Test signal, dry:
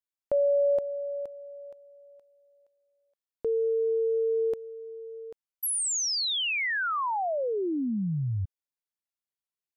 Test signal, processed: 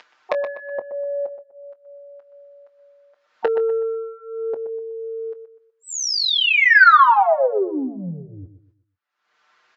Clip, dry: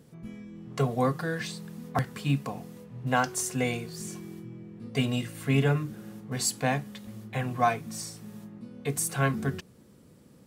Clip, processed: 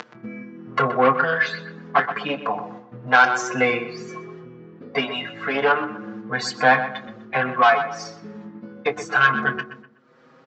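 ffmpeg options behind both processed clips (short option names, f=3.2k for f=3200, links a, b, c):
-filter_complex "[0:a]aemphasis=mode=reproduction:type=bsi,agate=range=-24dB:threshold=-37dB:ratio=16:release=473:detection=peak,afftdn=nr=13:nf=-45,equalizer=f=1.4k:w=1.4:g=11.5,acompressor=mode=upward:threshold=-28dB:ratio=2.5:attack=92:release=281:knee=2.83:detection=peak,aresample=16000,asoftclip=type=tanh:threshold=-14dB,aresample=44100,highpass=520,lowpass=5.6k,asplit=2[a][b];[b]adelay=23,volume=-14dB[c];[a][c]amix=inputs=2:normalize=0,asplit=2[d][e];[e]adelay=124,lowpass=f=2.9k:p=1,volume=-11dB,asplit=2[f][g];[g]adelay=124,lowpass=f=2.9k:p=1,volume=0.34,asplit=2[h][i];[i]adelay=124,lowpass=f=2.9k:p=1,volume=0.34,asplit=2[j][k];[k]adelay=124,lowpass=f=2.9k:p=1,volume=0.34[l];[f][h][j][l]amix=inputs=4:normalize=0[m];[d][m]amix=inputs=2:normalize=0,alimiter=level_in=13.5dB:limit=-1dB:release=50:level=0:latency=1,asplit=2[n][o];[o]adelay=6.2,afreqshift=0.32[p];[n][p]amix=inputs=2:normalize=1"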